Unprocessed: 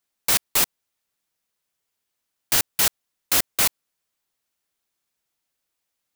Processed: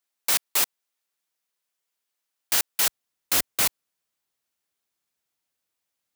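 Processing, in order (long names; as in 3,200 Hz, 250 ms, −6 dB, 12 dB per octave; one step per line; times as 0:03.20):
high-pass filter 440 Hz 6 dB per octave, from 0:02.87 52 Hz
level −2.5 dB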